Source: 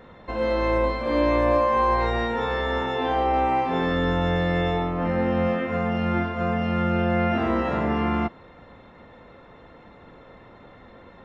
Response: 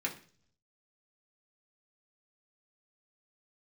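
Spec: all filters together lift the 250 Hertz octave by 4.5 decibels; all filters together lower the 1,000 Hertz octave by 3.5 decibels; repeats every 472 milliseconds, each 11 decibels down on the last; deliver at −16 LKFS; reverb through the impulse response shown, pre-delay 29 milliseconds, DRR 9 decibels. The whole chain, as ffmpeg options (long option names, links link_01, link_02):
-filter_complex "[0:a]equalizer=frequency=250:width_type=o:gain=6,equalizer=frequency=1000:width_type=o:gain=-5,aecho=1:1:472|944|1416:0.282|0.0789|0.0221,asplit=2[link_01][link_02];[1:a]atrim=start_sample=2205,adelay=29[link_03];[link_02][link_03]afir=irnorm=-1:irlink=0,volume=-13dB[link_04];[link_01][link_04]amix=inputs=2:normalize=0,volume=5.5dB"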